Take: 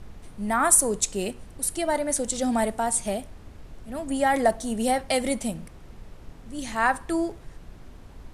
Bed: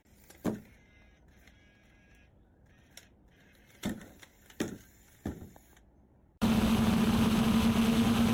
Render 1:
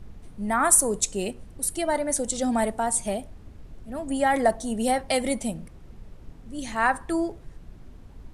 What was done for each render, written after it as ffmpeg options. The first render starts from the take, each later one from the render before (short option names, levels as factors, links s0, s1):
-af "afftdn=nr=6:nf=-46"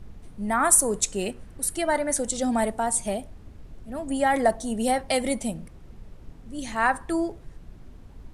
-filter_complex "[0:a]asettb=1/sr,asplit=3[s0][s1][s2];[s0]atrim=end=0.884[s3];[s1]atrim=start=0.88:end=2.29,asetpts=PTS-STARTPTS,afade=t=in:d=0.004:c=qsin,afade=t=out:st=1.406:d=0.004:c=qsin,equalizer=f=1600:t=o:w=1.1:g=5[s4];[s2]atrim=start=2.286[s5];[s3][s4]acrossfade=d=0.004:c1=hsin:c2=qsin[s6];[s6][s5]acrossfade=d=0.004:c1=qsin:c2=hsin"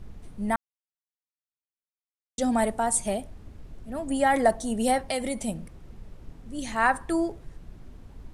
-filter_complex "[0:a]asettb=1/sr,asplit=3[s0][s1][s2];[s0]atrim=end=4.984[s3];[s1]atrim=start=4.98:end=5.48,asetpts=PTS-STARTPTS,afade=t=in:d=0.004:c=qsin,afade=t=out:st=0.496:d=0.004:c=qsin,acompressor=threshold=0.0398:ratio=2:attack=3.2:release=140:knee=1:detection=peak[s4];[s2]atrim=start=5.476[s5];[s3][s4]acrossfade=d=0.004:c1=hsin:c2=qsin[s6];[s6][s5]acrossfade=d=0.004:c1=qsin:c2=hsin,asplit=3[s7][s8][s9];[s7]atrim=end=0.56,asetpts=PTS-STARTPTS,afade=t=out:st=0.556:d=0.004:c=hsin[s10];[s8]atrim=start=0.56:end=2.38,asetpts=PTS-STARTPTS,volume=0[s11];[s9]atrim=start=2.38,asetpts=PTS-STARTPTS,afade=t=in:d=0.004:c=hsin[s12];[s10][s11][s12]concat=n=3:v=0:a=1"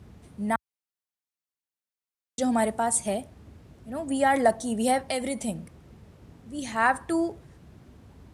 -af "highpass=f=65:w=0.5412,highpass=f=65:w=1.3066"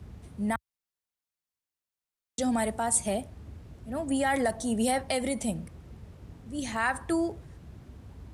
-filter_complex "[0:a]acrossover=split=100|1800[s0][s1][s2];[s0]acontrast=79[s3];[s1]alimiter=limit=0.0944:level=0:latency=1:release=96[s4];[s3][s4][s2]amix=inputs=3:normalize=0"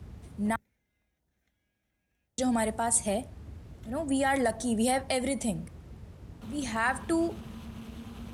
-filter_complex "[1:a]volume=0.119[s0];[0:a][s0]amix=inputs=2:normalize=0"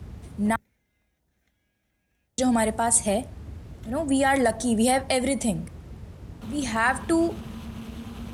-af "volume=1.88"